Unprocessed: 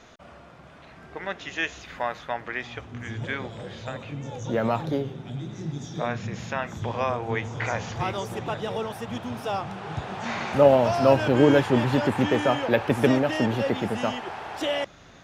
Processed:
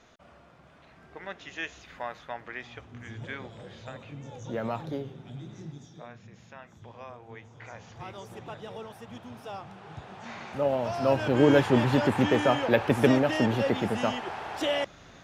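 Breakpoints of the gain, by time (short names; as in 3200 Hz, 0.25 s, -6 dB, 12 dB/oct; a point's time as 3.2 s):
5.59 s -7.5 dB
6.09 s -18 dB
7.56 s -18 dB
8.34 s -11 dB
10.61 s -11 dB
11.61 s -1 dB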